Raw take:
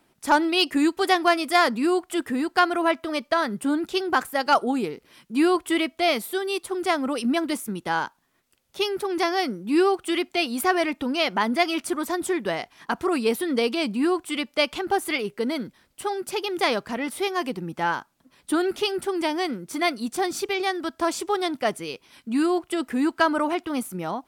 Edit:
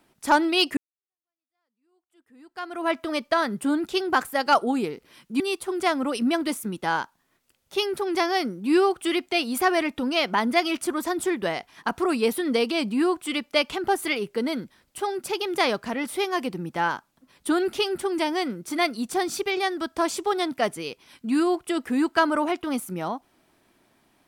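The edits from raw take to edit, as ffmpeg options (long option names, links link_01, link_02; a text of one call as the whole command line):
ffmpeg -i in.wav -filter_complex "[0:a]asplit=3[link_01][link_02][link_03];[link_01]atrim=end=0.77,asetpts=PTS-STARTPTS,afade=type=out:start_time=0.766:duration=0.004:curve=hsin[link_04];[link_02]atrim=start=0.77:end=5.402,asetpts=PTS-STARTPTS,afade=type=in:duration=2.18:curve=exp[link_05];[link_03]atrim=start=6.428[link_06];[link_04][link_05]concat=n=2:v=0:a=1[link_07];[link_07][link_06]acrossfade=duration=0.004:curve1=hsin:curve2=hsin" out.wav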